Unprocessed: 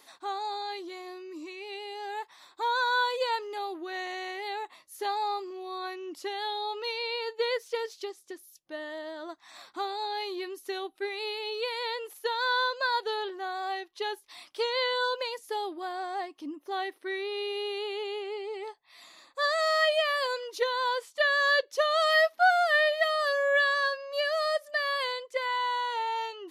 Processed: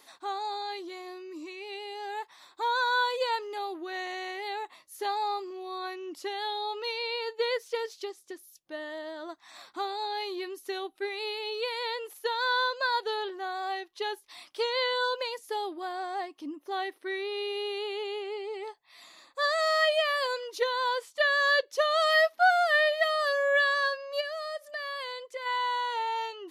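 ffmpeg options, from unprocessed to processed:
-filter_complex "[0:a]asplit=3[a][b][c];[a]afade=t=out:st=24.2:d=0.02[d];[b]acompressor=threshold=-38dB:ratio=2:attack=3.2:release=140:knee=1:detection=peak,afade=t=in:st=24.2:d=0.02,afade=t=out:st=25.45:d=0.02[e];[c]afade=t=in:st=25.45:d=0.02[f];[d][e][f]amix=inputs=3:normalize=0"

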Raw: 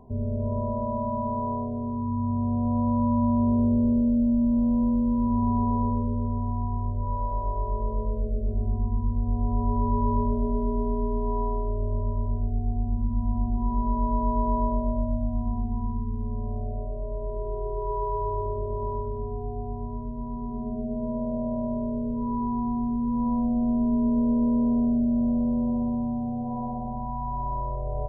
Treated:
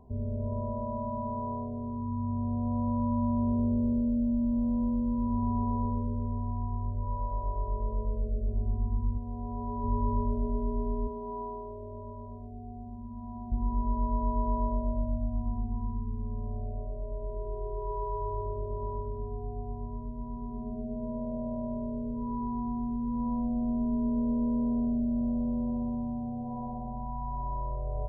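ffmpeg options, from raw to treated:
-filter_complex "[0:a]asettb=1/sr,asplit=3[a][b][c];[a]atrim=end=9.174[d];[b]atrim=start=9.17:end=9.84,asetpts=PTS-STARTPTS,afade=t=in:d=0.004:c=qsin,afade=t=out:st=0.666:d=0.004:c=qsin,lowshelf=f=120:g=-11.5[e];[c]atrim=start=9.836[f];[d][e]acrossfade=d=0.004:c1=hsin:c2=qsin[g];[g][f]acrossfade=d=0.004:c1=qsin:c2=hsin,asettb=1/sr,asplit=3[h][i][j];[h]atrim=end=11.074[k];[i]atrim=start=11.07:end=13.52,asetpts=PTS-STARTPTS,afade=t=in:d=0.004:c=qsin,afade=t=out:st=2.446:d=0.004:c=qsin,highpass=f=320:p=1[l];[j]atrim=start=13.516[m];[k][l]acrossfade=d=0.004:c1=hsin:c2=qsin[n];[n][m]acrossfade=d=0.004:c1=qsin:c2=hsin,equalizer=f=62:w=2.9:g=10.5,volume=-6dB"

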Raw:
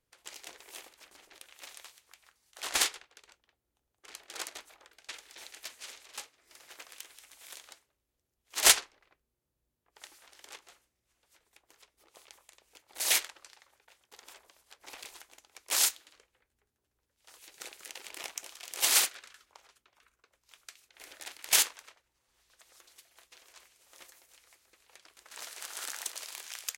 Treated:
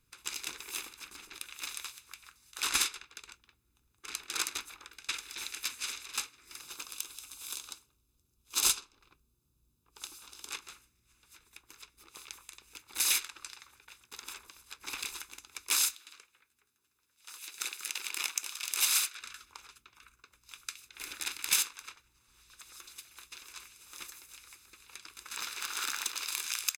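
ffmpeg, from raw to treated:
-filter_complex "[0:a]asettb=1/sr,asplit=3[a][b][c];[a]atrim=end=6.614[d];[b]atrim=start=6.61:end=10.51,asetpts=PTS-STARTPTS,afade=t=in:d=0.004:c=qsin,afade=t=out:st=3.896:d=0.004:c=qsin,equalizer=f=1.9k:w=1.9:g=-11[e];[c]atrim=start=10.506[f];[d][e]acrossfade=d=0.004:c1=hsin:c2=qsin[g];[g][f]acrossfade=d=0.004:c1=qsin:c2=hsin,asettb=1/sr,asplit=3[h][i][j];[h]atrim=end=15.954[k];[i]atrim=start=15.95:end=19.21,asetpts=PTS-STARTPTS,afade=t=in:d=0.004:c=qsin,afade=t=out:st=3.256:d=0.004:c=qsin,highpass=f=680:p=1[l];[j]atrim=start=19.206[m];[k][l]acrossfade=d=0.004:c1=hsin:c2=qsin[n];[n][m]acrossfade=d=0.004:c1=qsin:c2=hsin,asettb=1/sr,asplit=3[o][p][q];[o]atrim=end=25.364[r];[p]atrim=start=25.36:end=26.28,asetpts=PTS-STARTPTS,afade=t=in:d=0.004:c=qsin,afade=t=out:st=0.916:d=0.004:c=qsin,equalizer=f=10k:w=0.7:g=-8.5[s];[q]atrim=start=26.276[t];[r][s]acrossfade=d=0.004:c1=hsin:c2=qsin[u];[u][t]acrossfade=d=0.004:c1=qsin:c2=hsin,acompressor=threshold=-36dB:ratio=4,equalizer=f=650:t=o:w=1:g=-10.5,aecho=1:1:0.8:0.52,volume=8dB"

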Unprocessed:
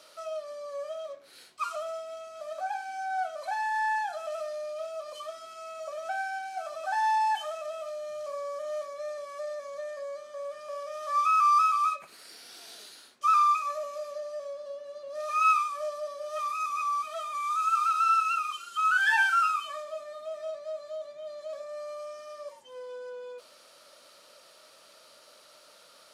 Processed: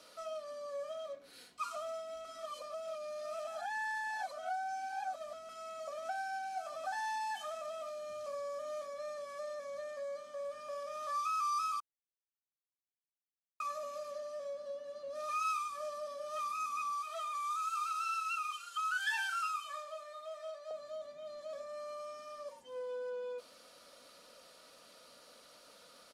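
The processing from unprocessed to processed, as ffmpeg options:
-filter_complex "[0:a]asettb=1/sr,asplit=3[a][b][c];[a]atrim=end=16.924[d];[b]atrim=start=16.92:end=20.71,asetpts=PTS-STARTPTS,afade=t=in:d=0.004:c=qsin,afade=t=out:st=3.786:d=0.004:c=qsin,highpass=610[e];[c]atrim=start=20.706[f];[d][e]acrossfade=d=0.004:c1=hsin:c2=qsin[g];[g][f]acrossfade=d=0.004:c1=qsin:c2=hsin,asplit=5[h][i][j][k][l];[h]atrim=end=2.252[m];[i]atrim=start=2.248:end=5.492,asetpts=PTS-STARTPTS,areverse[n];[j]atrim=start=5.488:end=11.8,asetpts=PTS-STARTPTS,afade=t=out:st=6.308:d=0.004:c=hsin[o];[k]atrim=start=11.8:end=13.6,asetpts=PTS-STARTPTS,volume=0[p];[l]atrim=start=13.6,asetpts=PTS-STARTPTS,afade=t=in:d=0.004:c=hsin[q];[m][n]acrossfade=d=0.004:c1=hsin:c2=hsin[r];[o][p][q]concat=n=3:v=0:a=1[s];[r][s]acrossfade=d=0.004:c1=hsin:c2=hsin,lowshelf=f=290:g=10.5,aecho=1:1:4.1:0.4,acrossover=split=200|3000[t][u][v];[u]acompressor=threshold=-33dB:ratio=3[w];[t][w][v]amix=inputs=3:normalize=0,volume=-4.5dB"

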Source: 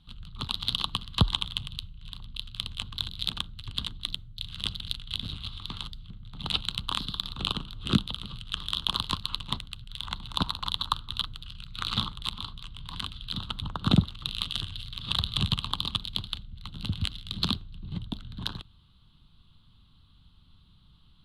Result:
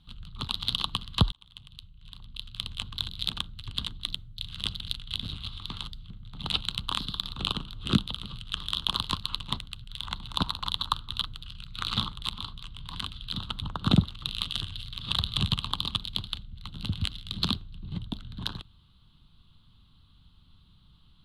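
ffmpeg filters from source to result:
-filter_complex "[0:a]asplit=2[a][b];[a]atrim=end=1.32,asetpts=PTS-STARTPTS,afade=t=out:st=1.316:d=0.004:c=hsin[c];[b]atrim=start=1.32,asetpts=PTS-STARTPTS,afade=t=in:d=1.42[d];[c][d]concat=n=2:v=0:a=1"

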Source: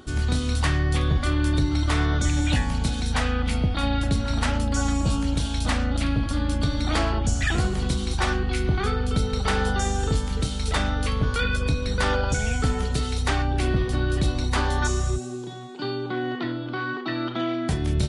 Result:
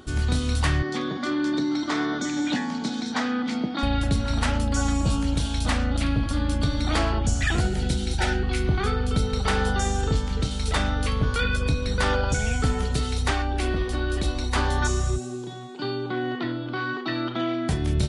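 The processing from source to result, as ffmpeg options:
-filter_complex "[0:a]asettb=1/sr,asplit=3[a][b][c];[a]atrim=end=0.824[d];[b]atrim=start=0.82:end=3.83,asetpts=PTS-STARTPTS,afade=t=in:d=0.004:c=qsin,afade=t=out:st=3.006:d=0.004:c=qsin,highpass=f=200:w=0.5412,highpass=f=200:w=1.3066,equalizer=f=240:t=q:w=4:g=6,equalizer=f=350:t=q:w=4:g=4,equalizer=f=520:t=q:w=4:g=-4,equalizer=f=2.7k:t=q:w=4:g=-8,lowpass=f=6.7k:w=0.5412,lowpass=f=6.7k:w=1.3066[e];[c]atrim=start=3.826[f];[d][e]acrossfade=d=0.004:c1=hsin:c2=qsin[g];[g][f]acrossfade=d=0.004:c1=qsin:c2=hsin,asettb=1/sr,asplit=3[h][i][j];[h]atrim=end=7.604[k];[i]atrim=start=7.6:end=8.43,asetpts=PTS-STARTPTS,afade=t=in:d=0.004:c=qsin,afade=t=out:st=0.826:d=0.004:c=qsin,asuperstop=centerf=1100:order=20:qfactor=4.3[l];[j]atrim=start=8.426[m];[k][l]acrossfade=d=0.004:c1=hsin:c2=qsin[n];[n][m]acrossfade=d=0.004:c1=qsin:c2=hsin,asettb=1/sr,asplit=3[o][p][q];[o]atrim=end=10.014[r];[p]atrim=start=10.01:end=10.51,asetpts=PTS-STARTPTS,afade=t=in:d=0.004:c=qsin,afade=t=out:st=0.496:d=0.004:c=qsin,lowpass=6.8k[s];[q]atrim=start=10.506[t];[r][s]acrossfade=d=0.004:c1=hsin:c2=qsin[u];[u][t]acrossfade=d=0.004:c1=qsin:c2=hsin,asettb=1/sr,asplit=3[v][w][x];[v]atrim=end=13.314[y];[w]atrim=start=13.31:end=14.55,asetpts=PTS-STARTPTS,afade=t=in:d=0.004:c=qsin,afade=t=out:st=1.236:d=0.004:c=qsin,equalizer=f=130:w=1.5:g=-12[z];[x]atrim=start=14.546[aa];[y][z]acrossfade=d=0.004:c1=hsin:c2=qsin[ab];[ab][aa]acrossfade=d=0.004:c1=qsin:c2=hsin,asettb=1/sr,asplit=3[ac][ad][ae];[ac]atrim=end=16.754[af];[ad]atrim=start=16.75:end=17.21,asetpts=PTS-STARTPTS,afade=t=in:d=0.004:c=qsin,afade=t=out:st=0.456:d=0.004:c=qsin,highshelf=f=6k:g=8[ag];[ae]atrim=start=17.206[ah];[af][ag]acrossfade=d=0.004:c1=hsin:c2=qsin[ai];[ai][ah]acrossfade=d=0.004:c1=qsin:c2=hsin"

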